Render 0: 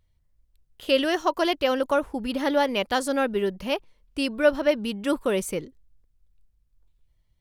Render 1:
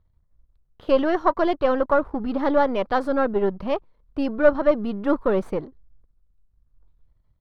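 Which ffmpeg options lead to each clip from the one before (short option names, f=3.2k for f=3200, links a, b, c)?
-af "aeval=exprs='if(lt(val(0),0),0.447*val(0),val(0))':c=same,firequalizer=gain_entry='entry(840,0);entry(1200,2);entry(1900,-8);entry(2800,-15);entry(4000,-11);entry(7000,-27)':delay=0.05:min_phase=1,volume=6dB"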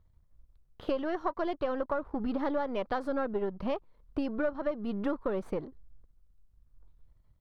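-af "acompressor=threshold=-29dB:ratio=5"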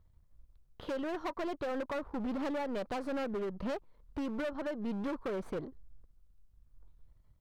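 -af "volume=32.5dB,asoftclip=hard,volume=-32.5dB"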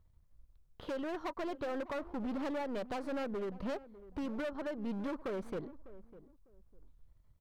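-filter_complex "[0:a]asplit=2[a][b];[b]adelay=601,lowpass=f=890:p=1,volume=-16dB,asplit=2[c][d];[d]adelay=601,lowpass=f=890:p=1,volume=0.25[e];[a][c][e]amix=inputs=3:normalize=0,volume=-2dB"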